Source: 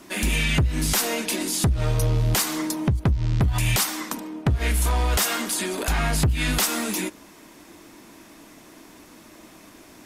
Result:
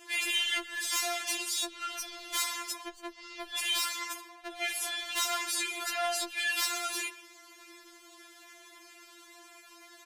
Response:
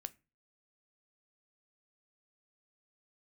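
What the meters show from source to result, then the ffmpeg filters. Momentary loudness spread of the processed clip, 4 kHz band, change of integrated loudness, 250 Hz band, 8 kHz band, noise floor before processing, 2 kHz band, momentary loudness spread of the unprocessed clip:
14 LU, -2.5 dB, -8.0 dB, -21.0 dB, -7.0 dB, -49 dBFS, -4.5 dB, 4 LU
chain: -filter_complex "[0:a]asplit=2[a][b];[b]highpass=f=720:p=1,volume=13dB,asoftclip=type=tanh:threshold=-11dB[c];[a][c]amix=inputs=2:normalize=0,lowpass=f=2k:p=1,volume=-6dB,tiltshelf=f=1.4k:g=-8.5,asplit=2[d][e];[e]adelay=130,highpass=300,lowpass=3.4k,asoftclip=type=hard:threshold=-19.5dB,volume=-16dB[f];[d][f]amix=inputs=2:normalize=0,afftfilt=real='re*4*eq(mod(b,16),0)':imag='im*4*eq(mod(b,16),0)':win_size=2048:overlap=0.75,volume=-7dB"

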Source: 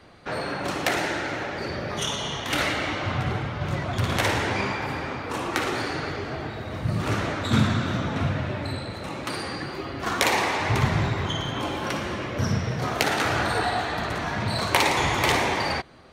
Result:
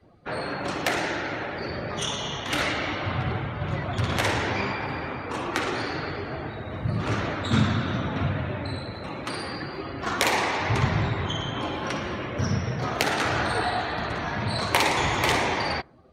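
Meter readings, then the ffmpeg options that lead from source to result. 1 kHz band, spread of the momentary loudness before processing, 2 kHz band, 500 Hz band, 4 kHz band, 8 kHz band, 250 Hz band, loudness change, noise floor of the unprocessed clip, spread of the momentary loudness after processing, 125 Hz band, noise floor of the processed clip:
-1.0 dB, 9 LU, -1.0 dB, -1.0 dB, -1.0 dB, -2.0 dB, -1.0 dB, -1.0 dB, -35 dBFS, 9 LU, -1.0 dB, -36 dBFS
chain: -af "afftdn=nr=16:nf=-46,volume=-1dB"

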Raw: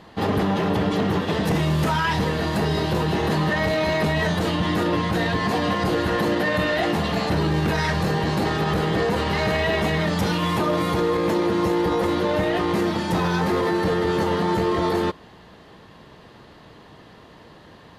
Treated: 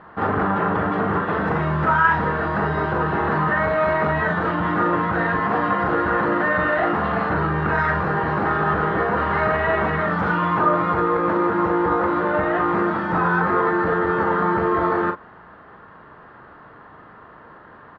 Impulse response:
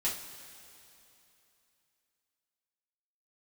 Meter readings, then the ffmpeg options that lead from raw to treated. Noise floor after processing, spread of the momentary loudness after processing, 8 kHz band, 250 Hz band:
-45 dBFS, 3 LU, under -25 dB, -1.0 dB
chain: -filter_complex "[0:a]lowpass=f=1.4k:t=q:w=3.7,lowshelf=f=390:g=-4.5,asplit=2[a][b];[b]adelay=40,volume=-7dB[c];[a][c]amix=inputs=2:normalize=0"

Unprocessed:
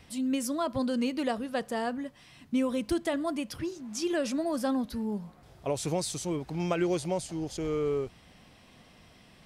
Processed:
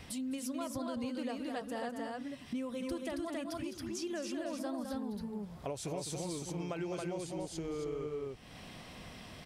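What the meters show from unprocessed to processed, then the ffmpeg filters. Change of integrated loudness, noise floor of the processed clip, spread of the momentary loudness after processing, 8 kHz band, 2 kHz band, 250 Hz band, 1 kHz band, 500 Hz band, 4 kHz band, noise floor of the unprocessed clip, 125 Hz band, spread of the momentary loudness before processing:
-8.0 dB, -51 dBFS, 5 LU, -6.0 dB, -7.5 dB, -7.5 dB, -8.0 dB, -8.0 dB, -6.5 dB, -57 dBFS, -7.0 dB, 7 LU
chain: -filter_complex "[0:a]asplit=2[a][b];[b]aecho=0:1:207|274.1:0.398|0.708[c];[a][c]amix=inputs=2:normalize=0,acompressor=threshold=-46dB:ratio=3,volume=4.5dB"

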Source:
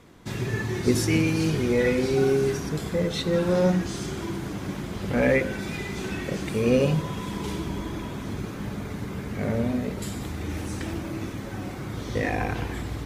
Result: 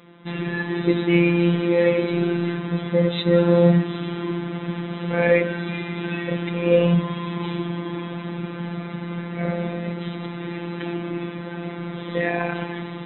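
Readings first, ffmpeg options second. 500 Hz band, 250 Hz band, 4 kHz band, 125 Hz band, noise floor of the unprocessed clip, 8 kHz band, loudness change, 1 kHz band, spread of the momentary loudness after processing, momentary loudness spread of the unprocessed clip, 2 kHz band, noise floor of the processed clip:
+4.0 dB, +4.0 dB, +1.5 dB, +3.5 dB, -35 dBFS, under -40 dB, +3.5 dB, +3.0 dB, 13 LU, 12 LU, +3.5 dB, -33 dBFS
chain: -af "afftfilt=real='re*between(b*sr/4096,120,4000)':imag='im*between(b*sr/4096,120,4000)':win_size=4096:overlap=0.75,afftfilt=real='hypot(re,im)*cos(PI*b)':imag='0':win_size=1024:overlap=0.75,volume=7dB"

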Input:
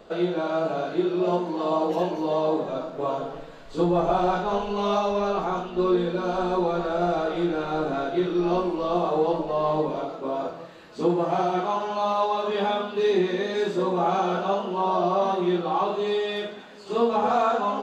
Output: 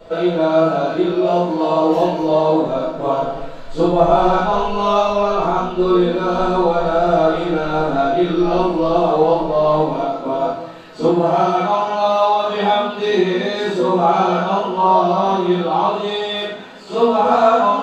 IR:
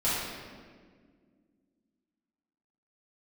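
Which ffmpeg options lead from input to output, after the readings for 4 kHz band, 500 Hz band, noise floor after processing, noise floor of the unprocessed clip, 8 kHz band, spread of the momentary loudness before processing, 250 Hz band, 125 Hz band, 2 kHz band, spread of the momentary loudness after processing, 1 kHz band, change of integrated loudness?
+9.0 dB, +8.5 dB, -30 dBFS, -43 dBFS, n/a, 7 LU, +7.5 dB, +8.0 dB, +8.0 dB, 7 LU, +9.0 dB, +8.5 dB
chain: -filter_complex "[1:a]atrim=start_sample=2205,atrim=end_sample=3528[a];[0:a][a]afir=irnorm=-1:irlink=0"

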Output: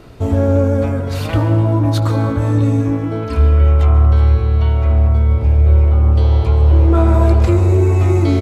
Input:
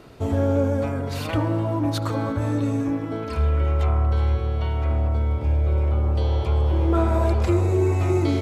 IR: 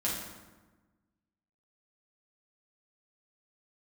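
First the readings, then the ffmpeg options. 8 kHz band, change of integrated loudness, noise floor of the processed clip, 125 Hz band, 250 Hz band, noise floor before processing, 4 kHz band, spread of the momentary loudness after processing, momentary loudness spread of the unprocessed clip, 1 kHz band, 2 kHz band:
n/a, +9.0 dB, -21 dBFS, +10.0 dB, +6.5 dB, -29 dBFS, +4.0 dB, 6 LU, 5 LU, +5.0 dB, +5.0 dB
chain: -filter_complex "[0:a]lowshelf=f=93:g=10,asplit=2[a][b];[b]adelay=18,volume=-13dB[c];[a][c]amix=inputs=2:normalize=0,asplit=2[d][e];[1:a]atrim=start_sample=2205,adelay=136[f];[e][f]afir=irnorm=-1:irlink=0,volume=-18dB[g];[d][g]amix=inputs=2:normalize=0,volume=4dB"

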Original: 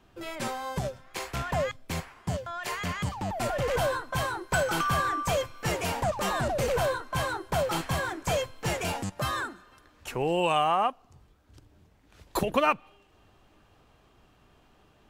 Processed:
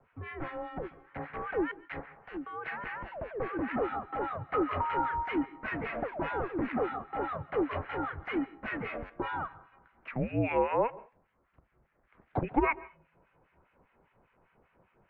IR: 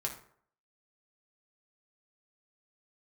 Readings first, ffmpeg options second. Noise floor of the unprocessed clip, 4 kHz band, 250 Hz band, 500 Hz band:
-62 dBFS, -18.0 dB, +1.0 dB, -4.5 dB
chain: -filter_complex "[0:a]crystalizer=i=4.5:c=0,acrossover=split=1400[a][b];[a]aeval=exprs='val(0)*(1-1/2+1/2*cos(2*PI*5*n/s))':c=same[c];[b]aeval=exprs='val(0)*(1-1/2-1/2*cos(2*PI*5*n/s))':c=same[d];[c][d]amix=inputs=2:normalize=0,asplit=2[e][f];[1:a]atrim=start_sample=2205,atrim=end_sample=4410,adelay=136[g];[f][g]afir=irnorm=-1:irlink=0,volume=-22dB[h];[e][h]amix=inputs=2:normalize=0,highpass=f=240:t=q:w=0.5412,highpass=f=240:t=q:w=1.307,lowpass=f=2.3k:t=q:w=0.5176,lowpass=f=2.3k:t=q:w=0.7071,lowpass=f=2.3k:t=q:w=1.932,afreqshift=-240"

